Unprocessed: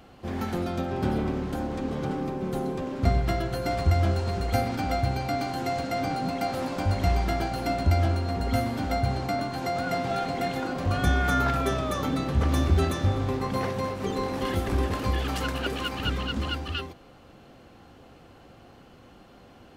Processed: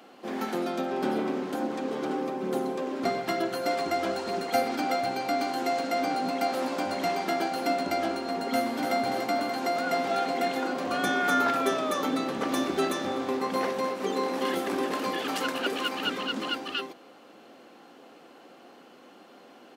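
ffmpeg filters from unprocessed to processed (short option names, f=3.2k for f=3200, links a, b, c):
-filter_complex "[0:a]asettb=1/sr,asplit=3[a][b][c];[a]atrim=end=1.624[d];[b]atrim=start=1.62:end=5.1,asetpts=PTS-STARTPTS,afade=t=in:d=0.004:c=qsin,afade=t=out:st=3.476:d=0.004:c=qsin,aphaser=in_gain=1:out_gain=1:delay=3.2:decay=0.26:speed=1.1:type=triangular[e];[c]atrim=start=5.096[f];[d][e]acrossfade=d=0.004:c1=hsin:c2=qsin[g];[g][f]acrossfade=d=0.004:c1=qsin:c2=hsin,asplit=2[h][i];[i]afade=t=in:st=8.53:d=0.01,afade=t=out:st=8.95:d=0.01,aecho=0:1:290|580|870|1160|1450|1740|2030|2320|2610|2900:0.530884|0.345075|0.224299|0.145794|0.0947662|0.061598|0.0400387|0.0260252|0.0169164|0.0109956[j];[h][j]amix=inputs=2:normalize=0,highpass=f=240:w=0.5412,highpass=f=240:w=1.3066,volume=1.5dB"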